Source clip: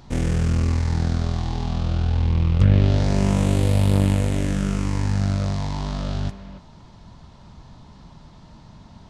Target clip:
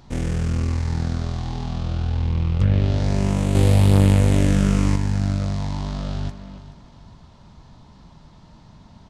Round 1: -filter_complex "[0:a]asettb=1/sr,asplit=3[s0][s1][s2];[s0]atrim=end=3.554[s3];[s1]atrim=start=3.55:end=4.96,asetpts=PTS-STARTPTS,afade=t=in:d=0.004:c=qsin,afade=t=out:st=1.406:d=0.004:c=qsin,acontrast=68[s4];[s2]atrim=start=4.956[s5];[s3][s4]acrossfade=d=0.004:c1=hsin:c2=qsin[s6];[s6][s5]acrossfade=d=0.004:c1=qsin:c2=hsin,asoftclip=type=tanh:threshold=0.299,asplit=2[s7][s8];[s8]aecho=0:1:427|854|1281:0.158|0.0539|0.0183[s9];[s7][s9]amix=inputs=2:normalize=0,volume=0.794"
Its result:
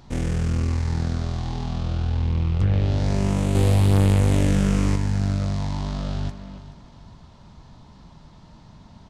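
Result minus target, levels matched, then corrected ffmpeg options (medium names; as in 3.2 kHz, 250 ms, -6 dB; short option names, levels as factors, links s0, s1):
saturation: distortion +13 dB
-filter_complex "[0:a]asettb=1/sr,asplit=3[s0][s1][s2];[s0]atrim=end=3.554[s3];[s1]atrim=start=3.55:end=4.96,asetpts=PTS-STARTPTS,afade=t=in:d=0.004:c=qsin,afade=t=out:st=1.406:d=0.004:c=qsin,acontrast=68[s4];[s2]atrim=start=4.956[s5];[s3][s4]acrossfade=d=0.004:c1=hsin:c2=qsin[s6];[s6][s5]acrossfade=d=0.004:c1=qsin:c2=hsin,asoftclip=type=tanh:threshold=0.841,asplit=2[s7][s8];[s8]aecho=0:1:427|854|1281:0.158|0.0539|0.0183[s9];[s7][s9]amix=inputs=2:normalize=0,volume=0.794"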